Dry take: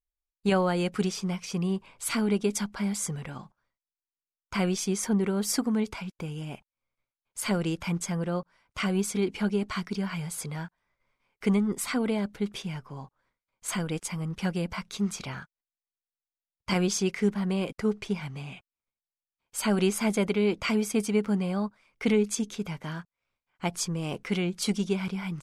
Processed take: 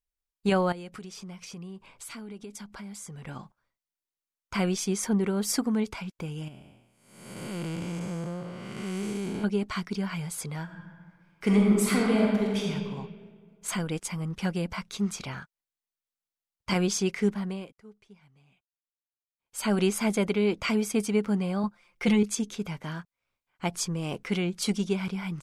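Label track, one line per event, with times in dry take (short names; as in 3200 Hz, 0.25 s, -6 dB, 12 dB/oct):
0.720000	3.270000	compressor 5:1, threshold -40 dBFS
6.480000	9.440000	time blur width 0.458 s
10.630000	12.700000	reverb throw, RT60 1.8 s, DRR -2.5 dB
17.280000	19.730000	dip -23.5 dB, fades 0.46 s
21.630000	22.230000	comb 5.7 ms, depth 83%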